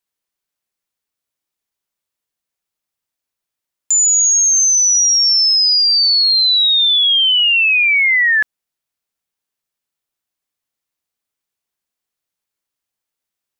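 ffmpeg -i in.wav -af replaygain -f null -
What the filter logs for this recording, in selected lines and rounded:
track_gain = -8.9 dB
track_peak = 0.243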